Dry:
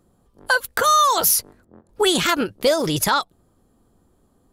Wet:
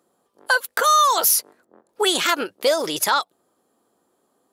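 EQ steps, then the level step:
high-pass filter 400 Hz 12 dB per octave
0.0 dB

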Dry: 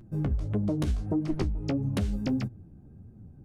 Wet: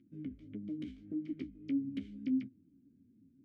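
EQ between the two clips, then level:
formant filter i
−1.5 dB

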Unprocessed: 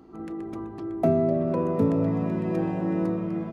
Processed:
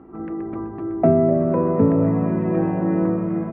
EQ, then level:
low-pass filter 2,100 Hz 24 dB per octave
+6.0 dB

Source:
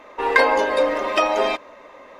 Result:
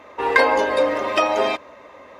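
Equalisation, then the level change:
high-pass filter 64 Hz
parametric band 84 Hz +11 dB 1.3 octaves
0.0 dB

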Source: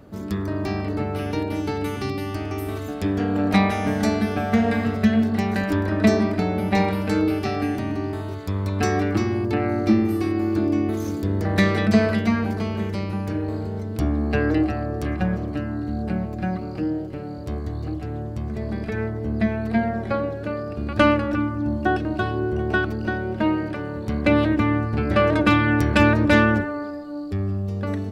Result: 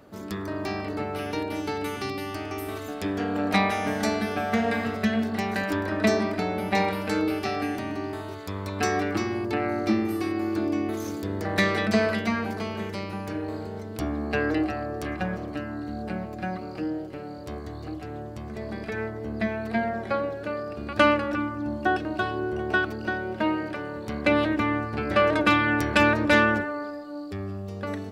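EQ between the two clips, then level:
low-shelf EQ 260 Hz −12 dB
0.0 dB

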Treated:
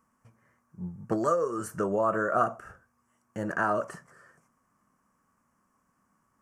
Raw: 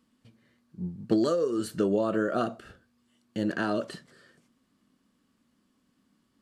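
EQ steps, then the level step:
drawn EQ curve 150 Hz 0 dB, 270 Hz −9 dB, 1,100 Hz +10 dB, 2,400 Hz −4 dB, 3,900 Hz −24 dB, 5,800 Hz +1 dB
0.0 dB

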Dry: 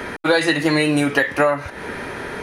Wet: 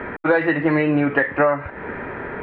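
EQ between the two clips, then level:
low-pass filter 2,200 Hz 24 dB per octave
high-frequency loss of the air 74 metres
0.0 dB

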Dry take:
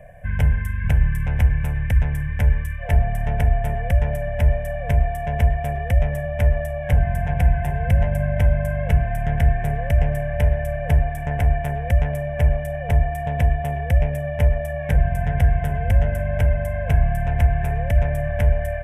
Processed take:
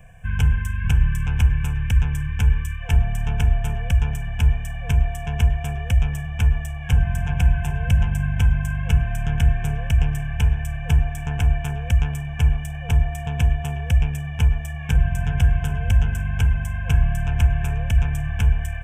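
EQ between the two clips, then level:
parametric band 510 Hz +5.5 dB 0.41 octaves
high-shelf EQ 2,100 Hz +11 dB
phaser with its sweep stopped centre 2,900 Hz, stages 8
0.0 dB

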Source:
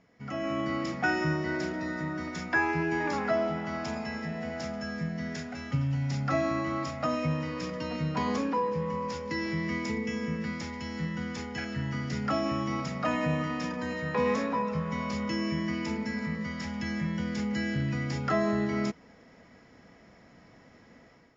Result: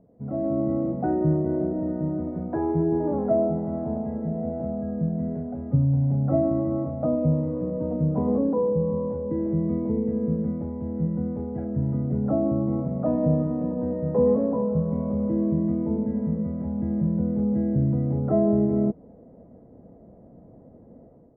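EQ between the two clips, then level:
Chebyshev low-pass filter 610 Hz, order 3
+8.5 dB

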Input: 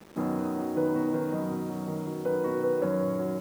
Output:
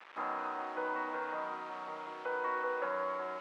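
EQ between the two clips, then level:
flat-topped band-pass 1,700 Hz, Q 0.83
+5.5 dB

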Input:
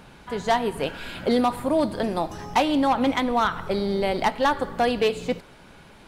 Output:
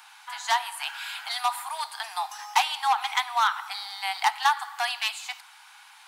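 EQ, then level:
Butterworth high-pass 760 Hz 96 dB per octave
high-shelf EQ 3,900 Hz +7.5 dB
0.0 dB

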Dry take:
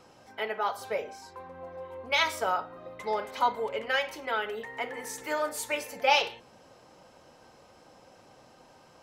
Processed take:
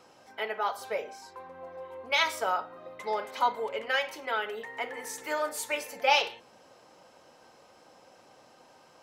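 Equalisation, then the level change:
low-shelf EQ 160 Hz −12 dB
0.0 dB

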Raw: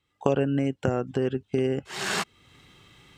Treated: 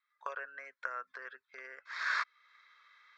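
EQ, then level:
inverse Chebyshev high-pass filter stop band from 330 Hz, stop band 50 dB
head-to-tape spacing loss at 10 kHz 34 dB
phaser with its sweep stopped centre 2,900 Hz, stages 6
+5.5 dB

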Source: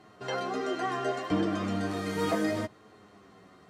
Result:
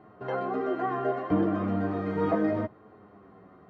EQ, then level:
low-pass filter 1,300 Hz 12 dB per octave
+3.0 dB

